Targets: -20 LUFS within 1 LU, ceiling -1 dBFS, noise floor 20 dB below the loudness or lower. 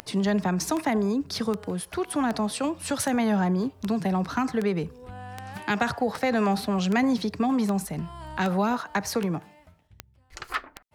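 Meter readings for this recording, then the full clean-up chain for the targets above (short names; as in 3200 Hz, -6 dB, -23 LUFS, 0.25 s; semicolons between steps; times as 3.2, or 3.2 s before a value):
clicks 15; loudness -27.0 LUFS; peak -11.5 dBFS; loudness target -20.0 LUFS
-> de-click; gain +7 dB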